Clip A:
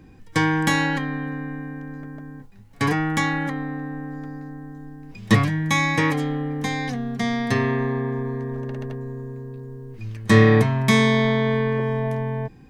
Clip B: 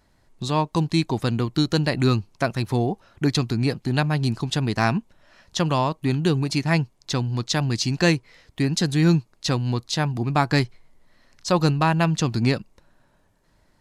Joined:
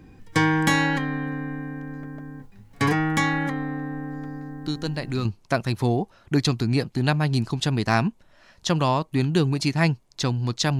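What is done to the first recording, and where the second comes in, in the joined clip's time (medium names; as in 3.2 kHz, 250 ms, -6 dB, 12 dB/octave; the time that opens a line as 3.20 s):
clip A
4.61 s: add clip B from 1.51 s 0.64 s -7.5 dB
5.25 s: go over to clip B from 2.15 s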